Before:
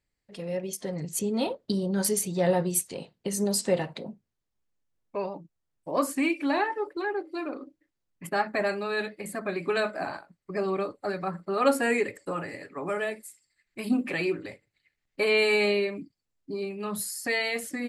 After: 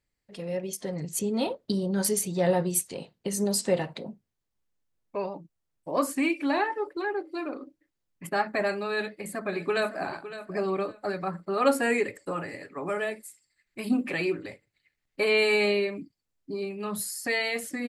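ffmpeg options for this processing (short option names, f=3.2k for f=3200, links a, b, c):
-filter_complex "[0:a]asplit=2[a][b];[b]afade=t=in:st=8.96:d=0.01,afade=t=out:st=10.03:d=0.01,aecho=0:1:560|1120:0.223872|0.0447744[c];[a][c]amix=inputs=2:normalize=0"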